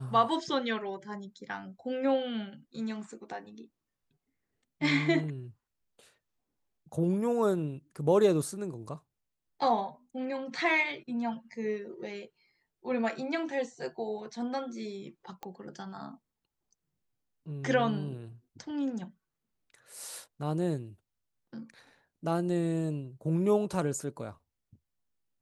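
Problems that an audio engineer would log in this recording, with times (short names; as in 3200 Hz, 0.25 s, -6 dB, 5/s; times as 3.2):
15.43 pop -26 dBFS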